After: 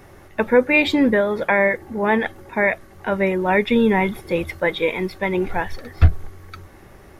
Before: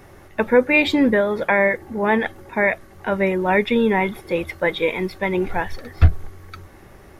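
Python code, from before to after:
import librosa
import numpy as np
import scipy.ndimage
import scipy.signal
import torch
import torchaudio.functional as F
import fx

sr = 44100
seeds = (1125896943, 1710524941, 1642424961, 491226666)

y = fx.bass_treble(x, sr, bass_db=4, treble_db=2, at=(3.69, 4.6))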